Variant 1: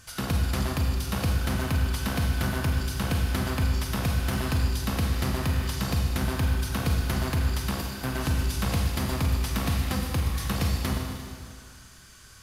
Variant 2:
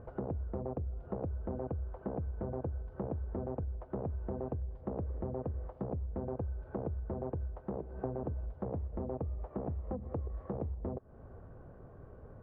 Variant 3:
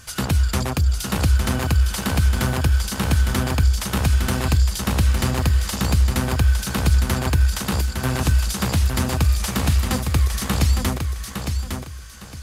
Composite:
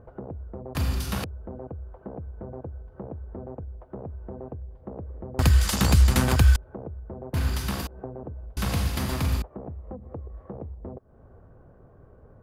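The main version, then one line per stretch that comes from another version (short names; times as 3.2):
2
0.75–1.24 from 1
5.39–6.56 from 3
7.34–7.87 from 1
8.57–9.42 from 1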